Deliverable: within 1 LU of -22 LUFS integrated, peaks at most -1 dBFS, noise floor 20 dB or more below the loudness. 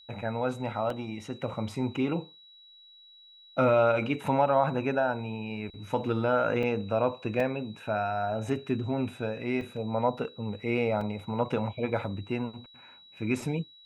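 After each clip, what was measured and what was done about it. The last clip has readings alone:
dropouts 6; longest dropout 3.1 ms; steady tone 3.9 kHz; tone level -52 dBFS; loudness -30.0 LUFS; peak level -12.0 dBFS; loudness target -22.0 LUFS
-> interpolate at 0.90/4.26/6.63/7.40/9.61/11.01 s, 3.1 ms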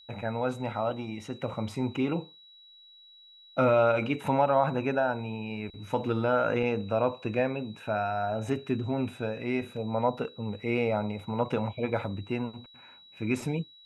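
dropouts 0; steady tone 3.9 kHz; tone level -52 dBFS
-> band-stop 3.9 kHz, Q 30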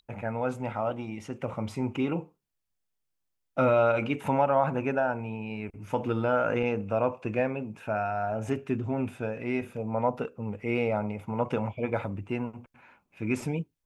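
steady tone not found; loudness -30.0 LUFS; peak level -12.0 dBFS; loudness target -22.0 LUFS
-> trim +8 dB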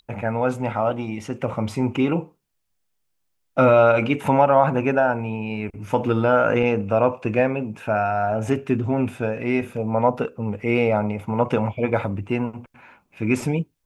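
loudness -22.0 LUFS; peak level -4.0 dBFS; noise floor -72 dBFS

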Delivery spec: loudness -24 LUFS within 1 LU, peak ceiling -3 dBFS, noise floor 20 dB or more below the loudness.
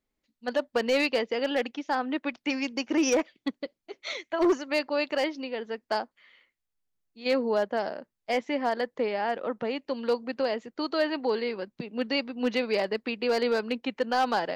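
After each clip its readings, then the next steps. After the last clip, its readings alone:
clipped samples 0.6%; clipping level -18.0 dBFS; loudness -29.0 LUFS; peak level -18.0 dBFS; loudness target -24.0 LUFS
-> clip repair -18 dBFS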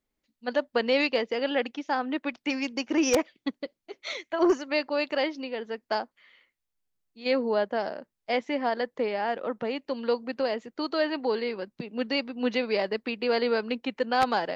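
clipped samples 0.0%; loudness -28.5 LUFS; peak level -9.0 dBFS; loudness target -24.0 LUFS
-> trim +4.5 dB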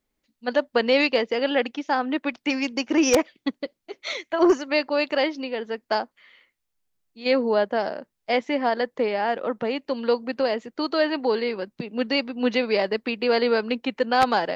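loudness -24.0 LUFS; peak level -4.5 dBFS; noise floor -79 dBFS

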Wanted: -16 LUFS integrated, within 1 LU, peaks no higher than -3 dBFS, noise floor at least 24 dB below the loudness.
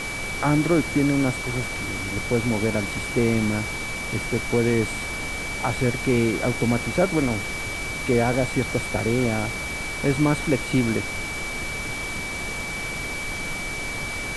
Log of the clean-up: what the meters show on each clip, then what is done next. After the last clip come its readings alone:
steady tone 2.3 kHz; tone level -30 dBFS; noise floor -30 dBFS; noise floor target -48 dBFS; loudness -24.0 LUFS; peak level -8.0 dBFS; loudness target -16.0 LUFS
-> band-stop 2.3 kHz, Q 30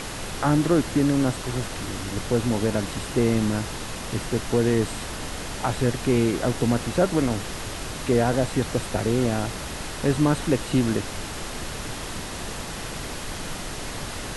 steady tone not found; noise floor -34 dBFS; noise floor target -50 dBFS
-> noise print and reduce 16 dB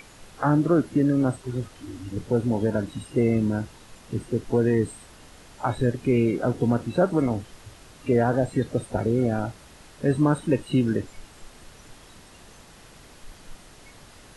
noise floor -50 dBFS; loudness -24.5 LUFS; peak level -9.0 dBFS; loudness target -16.0 LUFS
-> trim +8.5 dB; peak limiter -3 dBFS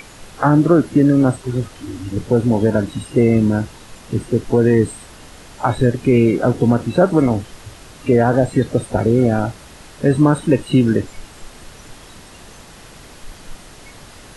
loudness -16.5 LUFS; peak level -3.0 dBFS; noise floor -41 dBFS

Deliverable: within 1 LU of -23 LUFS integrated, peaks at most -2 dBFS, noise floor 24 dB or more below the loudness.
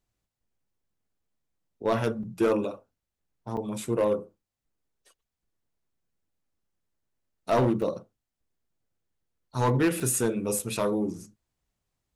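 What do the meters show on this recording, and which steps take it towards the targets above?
clipped samples 0.5%; clipping level -17.5 dBFS; dropouts 5; longest dropout 4.5 ms; loudness -27.5 LUFS; peak level -17.5 dBFS; loudness target -23.0 LUFS
-> clip repair -17.5 dBFS; interpolate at 2.23/3.57/7.82/10.00/10.59 s, 4.5 ms; trim +4.5 dB

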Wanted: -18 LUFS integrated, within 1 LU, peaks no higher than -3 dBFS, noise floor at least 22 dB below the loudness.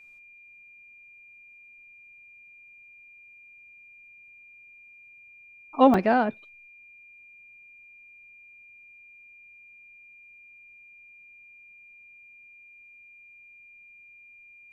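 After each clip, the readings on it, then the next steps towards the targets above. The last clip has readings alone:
dropouts 1; longest dropout 2.3 ms; steady tone 2.4 kHz; tone level -49 dBFS; loudness -22.0 LUFS; peak level -7.0 dBFS; loudness target -18.0 LUFS
-> interpolate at 5.94 s, 2.3 ms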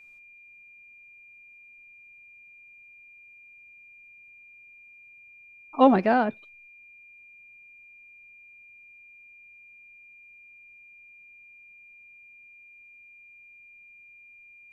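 dropouts 0; steady tone 2.4 kHz; tone level -49 dBFS
-> band-stop 2.4 kHz, Q 30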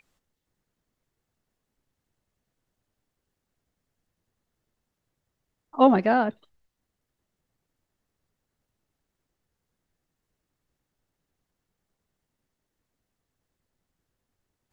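steady tone not found; loudness -21.5 LUFS; peak level -7.0 dBFS; loudness target -18.0 LUFS
-> trim +3.5 dB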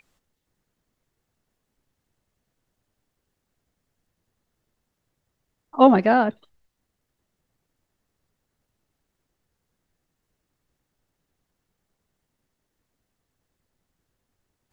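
loudness -18.0 LUFS; peak level -3.5 dBFS; noise floor -79 dBFS

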